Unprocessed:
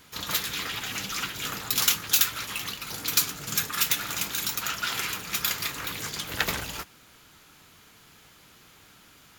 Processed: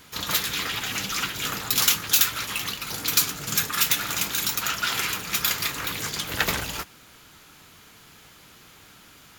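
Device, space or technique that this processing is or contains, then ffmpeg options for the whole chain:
parallel distortion: -filter_complex "[0:a]asplit=2[s0][s1];[s1]asoftclip=type=hard:threshold=0.0891,volume=0.562[s2];[s0][s2]amix=inputs=2:normalize=0"

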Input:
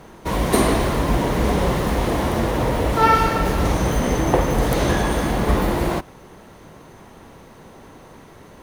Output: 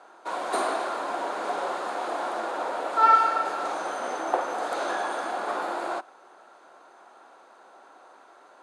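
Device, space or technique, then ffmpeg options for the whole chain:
phone speaker on a table: -af "highpass=f=390:w=0.5412,highpass=f=390:w=1.3066,equalizer=f=450:t=q:w=4:g=-7,equalizer=f=740:t=q:w=4:g=6,equalizer=f=1400:t=q:w=4:g=9,equalizer=f=2000:t=q:w=4:g=-7,equalizer=f=3000:t=q:w=4:g=-5,equalizer=f=5700:t=q:w=4:g=-8,lowpass=f=8500:w=0.5412,lowpass=f=8500:w=1.3066,volume=0.447"

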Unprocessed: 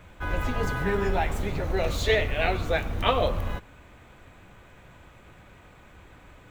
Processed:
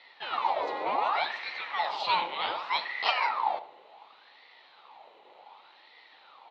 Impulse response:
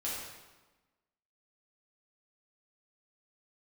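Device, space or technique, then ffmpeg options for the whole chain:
voice changer toy: -filter_complex "[0:a]asettb=1/sr,asplit=3[s0][s1][s2];[s0]atrim=end=1.374[s3];[s1]atrim=start=1.37:end=2.85,asetpts=PTS-STARTPTS,afade=t=in:d=0.004:c=qsin,afade=t=out:st=1.476:d=0.004:c=qsin,highpass=95[s4];[s2]atrim=start=2.846[s5];[s3][s4]acrossfade=d=0.004:c1=hsin:c2=qsin[s6];[s6][s5]acrossfade=d=0.004:c1=qsin:c2=hsin,aeval=exprs='val(0)*sin(2*PI*1200*n/s+1200*0.65/0.67*sin(2*PI*0.67*n/s))':c=same,highpass=480,equalizer=f=850:t=q:w=4:g=10,equalizer=f=1600:t=q:w=4:g=-10,equalizer=f=4000:t=q:w=4:g=10,lowpass=f=4300:w=0.5412,lowpass=f=4300:w=1.3066,asplit=2[s7][s8];[s8]adelay=74,lowpass=f=2000:p=1,volume=0.224,asplit=2[s9][s10];[s10]adelay=74,lowpass=f=2000:p=1,volume=0.41,asplit=2[s11][s12];[s12]adelay=74,lowpass=f=2000:p=1,volume=0.41,asplit=2[s13][s14];[s14]adelay=74,lowpass=f=2000:p=1,volume=0.41[s15];[s7][s9][s11][s13][s15]amix=inputs=5:normalize=0,volume=0.794"

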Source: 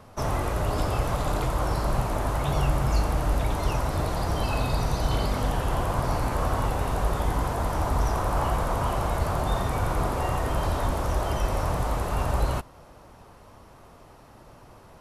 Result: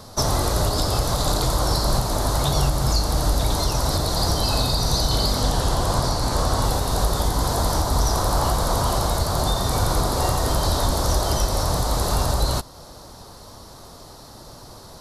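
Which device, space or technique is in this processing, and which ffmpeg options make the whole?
over-bright horn tweeter: -filter_complex "[0:a]asettb=1/sr,asplit=3[s0][s1][s2];[s0]atrim=end=5.404[s3];[s1]atrim=start=5.4:end=6.63,asetpts=PTS-STARTPTS,afade=t=in:d=0.004:c=qsin,afade=t=out:st=1.226:d=0.004:c=qsin,lowpass=11000[s4];[s2]atrim=start=6.626[s5];[s3][s4]acrossfade=d=0.004:c1=hsin:c2=qsin[s6];[s6][s5]acrossfade=d=0.004:c1=qsin:c2=hsin,highshelf=f=3300:t=q:w=3:g=8,alimiter=limit=0.141:level=0:latency=1:release=428,volume=2.24"

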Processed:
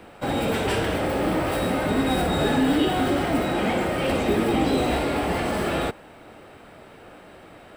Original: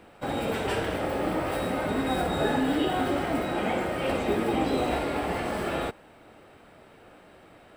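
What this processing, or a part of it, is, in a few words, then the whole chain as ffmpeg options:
one-band saturation: -filter_complex "[0:a]acrossover=split=330|2700[s0][s1][s2];[s1]asoftclip=type=tanh:threshold=0.0355[s3];[s0][s3][s2]amix=inputs=3:normalize=0,volume=2.11"

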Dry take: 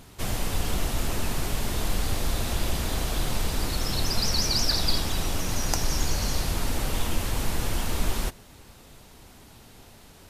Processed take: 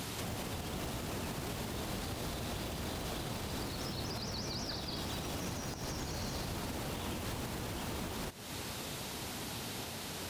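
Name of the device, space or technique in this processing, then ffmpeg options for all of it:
broadcast voice chain: -af "highpass=96,deesser=0.8,acompressor=threshold=0.00891:ratio=4,equalizer=f=4000:t=o:w=1.6:g=3,alimiter=level_in=5.31:limit=0.0631:level=0:latency=1:release=290,volume=0.188,volume=2.82"

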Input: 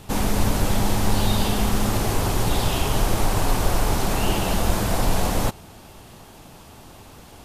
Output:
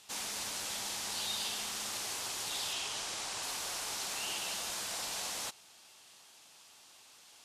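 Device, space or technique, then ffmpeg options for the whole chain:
piezo pickup straight into a mixer: -filter_complex "[0:a]lowpass=6300,aderivative,asettb=1/sr,asplit=3[s0][s1][s2];[s0]atrim=end=2.734[s3];[s1]atrim=start=2.73:end=3.43,asetpts=PTS-STARTPTS,afade=t=in:d=0.004:c=qsin,afade=t=out:st=0.696:d=0.004:c=qsin,lowpass=9400[s4];[s2]atrim=start=3.426[s5];[s3][s4]acrossfade=d=0.004:c1=hsin:c2=qsin[s6];[s6][s5]acrossfade=d=0.004:c1=qsin:c2=hsin"

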